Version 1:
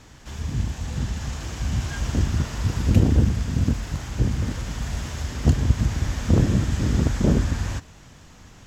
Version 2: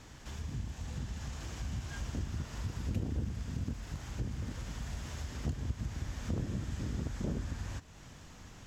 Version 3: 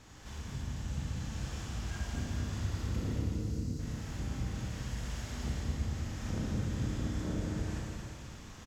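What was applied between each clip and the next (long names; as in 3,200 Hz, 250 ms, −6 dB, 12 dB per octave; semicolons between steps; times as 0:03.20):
downward compressor 2 to 1, threshold −38 dBFS, peak gain reduction 15 dB; level −4.5 dB
single-tap delay 223 ms −5.5 dB; time-frequency box erased 0:03.20–0:03.79, 550–3,800 Hz; four-comb reverb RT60 2.7 s, combs from 29 ms, DRR −3.5 dB; level −3.5 dB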